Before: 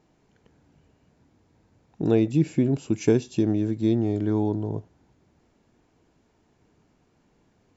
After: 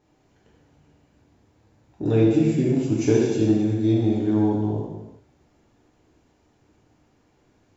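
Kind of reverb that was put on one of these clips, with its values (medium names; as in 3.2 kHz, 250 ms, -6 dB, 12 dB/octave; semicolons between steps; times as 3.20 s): gated-style reverb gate 440 ms falling, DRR -5.5 dB; trim -3.5 dB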